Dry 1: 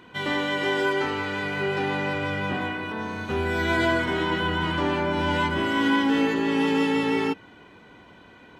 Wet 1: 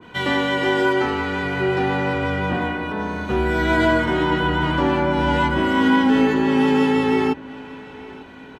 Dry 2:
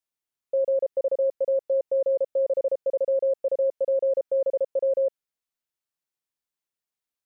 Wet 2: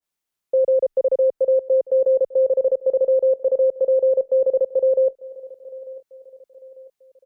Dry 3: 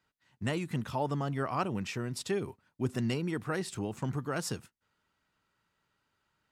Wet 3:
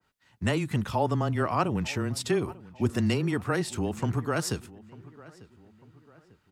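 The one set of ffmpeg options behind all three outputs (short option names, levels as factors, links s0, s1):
-filter_complex "[0:a]asplit=2[s0][s1];[s1]adelay=896,lowpass=f=2500:p=1,volume=0.1,asplit=2[s2][s3];[s3]adelay=896,lowpass=f=2500:p=1,volume=0.45,asplit=2[s4][s5];[s5]adelay=896,lowpass=f=2500:p=1,volume=0.45[s6];[s0][s2][s4][s6]amix=inputs=4:normalize=0,afreqshift=-15,adynamicequalizer=threshold=0.01:dfrequency=1600:dqfactor=0.7:tfrequency=1600:tqfactor=0.7:attack=5:release=100:ratio=0.375:range=2.5:mode=cutabove:tftype=highshelf,volume=2"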